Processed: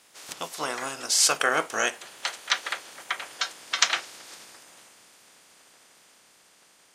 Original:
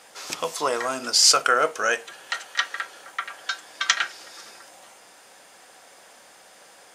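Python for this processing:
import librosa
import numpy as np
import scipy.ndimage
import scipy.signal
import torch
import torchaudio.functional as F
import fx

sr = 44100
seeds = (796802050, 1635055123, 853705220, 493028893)

y = fx.spec_clip(x, sr, under_db=14)
y = fx.doppler_pass(y, sr, speed_mps=13, closest_m=19.0, pass_at_s=3.15)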